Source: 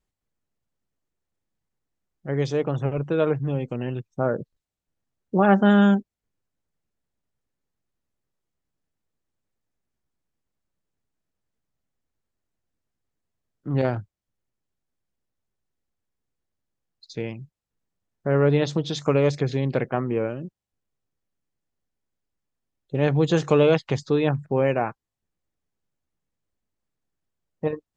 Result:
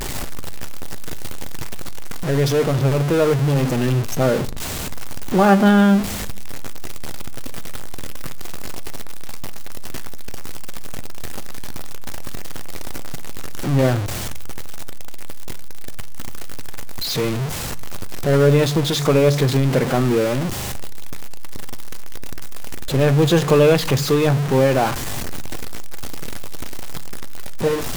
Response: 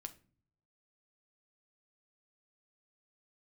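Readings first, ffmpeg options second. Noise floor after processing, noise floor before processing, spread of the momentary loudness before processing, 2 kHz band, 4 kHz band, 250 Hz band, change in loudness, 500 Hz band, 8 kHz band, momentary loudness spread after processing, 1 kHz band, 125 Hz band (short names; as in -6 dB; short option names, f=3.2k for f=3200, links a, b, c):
-25 dBFS, under -85 dBFS, 15 LU, +6.5 dB, +12.0 dB, +5.0 dB, +4.5 dB, +5.5 dB, n/a, 22 LU, +6.0 dB, +7.5 dB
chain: -filter_complex "[0:a]aeval=exprs='val(0)+0.5*0.0841*sgn(val(0))':c=same,asplit=2[a][b];[1:a]atrim=start_sample=2205,asetrate=37044,aresample=44100[c];[b][c]afir=irnorm=-1:irlink=0,volume=2.5dB[d];[a][d]amix=inputs=2:normalize=0,volume=-2.5dB"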